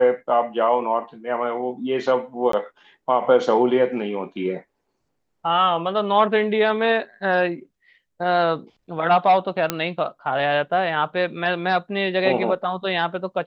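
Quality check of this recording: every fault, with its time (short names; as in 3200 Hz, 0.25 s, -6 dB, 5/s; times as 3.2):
2.52–2.53 gap 13 ms
9.7 pop -5 dBFS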